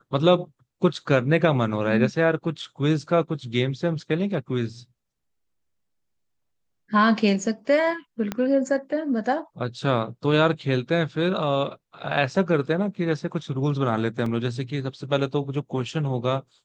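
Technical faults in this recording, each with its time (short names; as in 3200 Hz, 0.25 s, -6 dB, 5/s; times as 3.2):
8.32 pop -13 dBFS
14.26 gap 3.6 ms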